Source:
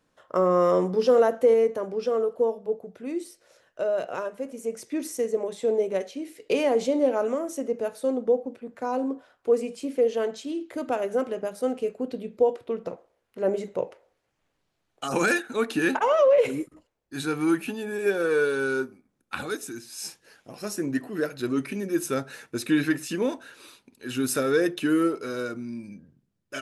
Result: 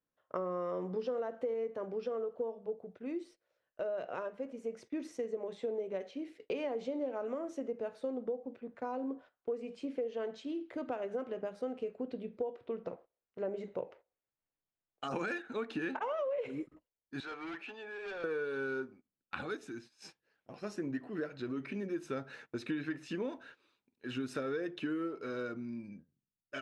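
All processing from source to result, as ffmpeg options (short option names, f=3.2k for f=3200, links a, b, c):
-filter_complex "[0:a]asettb=1/sr,asplit=3[a][b][c];[a]atrim=end=17.204[d];[b]atrim=start=17.2:end=18.24,asetpts=PTS-STARTPTS,afade=t=in:d=0.004:c=qsin,afade=t=out:st=1.036:d=0.004:c=qsin,highpass=620,lowpass=5.6k,asoftclip=type=hard:threshold=-33dB[e];[c]atrim=start=18.236[f];[d][e]acrossfade=d=0.004:c1=hsin:c2=qsin[g];[g][f]acrossfade=d=0.004:c1=qsin:c2=hsin,asettb=1/sr,asplit=3[h][i][j];[h]atrim=end=21.304[k];[i]atrim=start=21.3:end=21.74,asetpts=PTS-STARTPTS,afade=t=in:d=0.004:c=qsin,afade=t=out:st=0.436:d=0.004:c=qsin,lowpass=9.4k,acompressor=threshold=-28dB:ratio=2:attack=3.2:release=140:knee=1:detection=peak[l];[j]atrim=start=21.736[m];[k][l]acrossfade=d=0.004:c1=hsin:c2=qsin[n];[n][m]acrossfade=d=0.004:c1=qsin:c2=hsin,lowpass=3.5k,agate=range=-15dB:threshold=-46dB:ratio=16:detection=peak,acompressor=threshold=-27dB:ratio=6,volume=-6.5dB"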